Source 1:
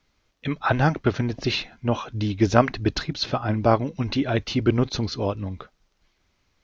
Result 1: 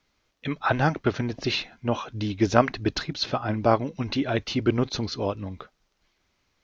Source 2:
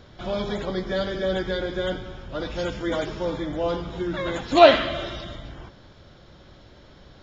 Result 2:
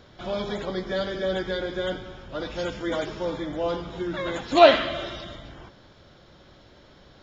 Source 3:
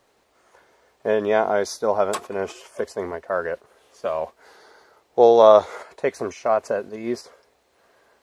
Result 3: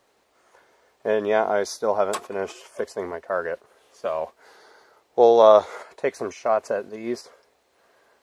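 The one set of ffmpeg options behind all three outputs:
-af "lowshelf=f=140:g=-6,volume=-1dB"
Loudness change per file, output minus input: -2.0, -1.5, -1.5 LU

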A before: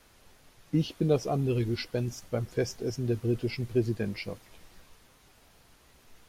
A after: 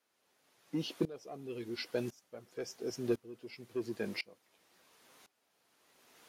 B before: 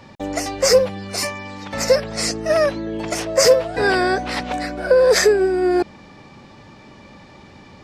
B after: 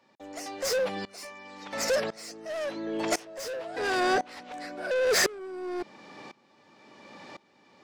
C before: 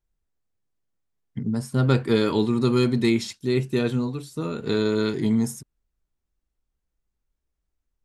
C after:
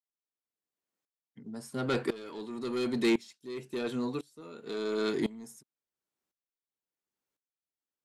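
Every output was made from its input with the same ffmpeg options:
-af "highpass=280,asoftclip=type=tanh:threshold=-20.5dB,aeval=exprs='val(0)*pow(10,-22*if(lt(mod(-0.95*n/s,1),2*abs(-0.95)/1000),1-mod(-0.95*n/s,1)/(2*abs(-0.95)/1000),(mod(-0.95*n/s,1)-2*abs(-0.95)/1000)/(1-2*abs(-0.95)/1000))/20)':c=same,volume=2dB"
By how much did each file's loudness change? -9.5, -11.5, -9.5 LU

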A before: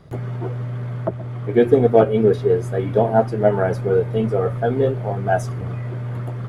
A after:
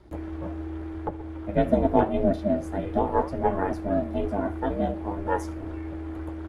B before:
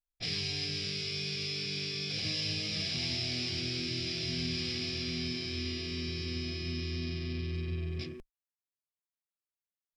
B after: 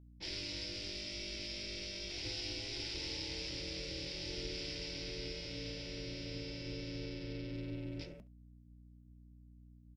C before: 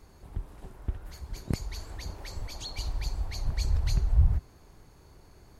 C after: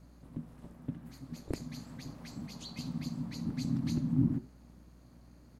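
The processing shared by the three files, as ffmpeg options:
-af "aeval=exprs='val(0)*sin(2*PI*200*n/s)':c=same,aeval=exprs='val(0)+0.00251*(sin(2*PI*60*n/s)+sin(2*PI*2*60*n/s)/2+sin(2*PI*3*60*n/s)/3+sin(2*PI*4*60*n/s)/4+sin(2*PI*5*60*n/s)/5)':c=same,flanger=delay=2:depth=9.6:regen=-88:speed=0.85:shape=triangular,aecho=1:1:71:0.0891"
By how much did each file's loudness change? -7.5, -7.5, -4.0 LU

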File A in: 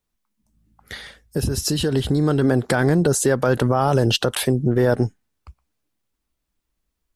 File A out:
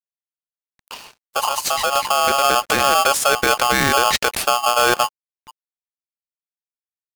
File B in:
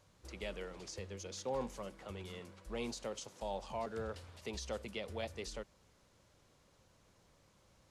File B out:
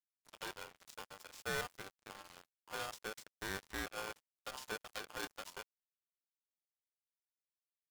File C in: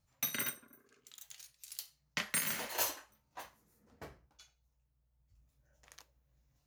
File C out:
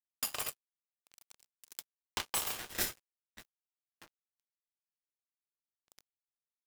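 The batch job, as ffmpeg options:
-af "aeval=exprs='sgn(val(0))*max(abs(val(0))-0.00562,0)':c=same,aeval=exprs='val(0)*sgn(sin(2*PI*970*n/s))':c=same,volume=1.5dB"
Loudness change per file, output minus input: +3.0, -1.5, -0.5 LU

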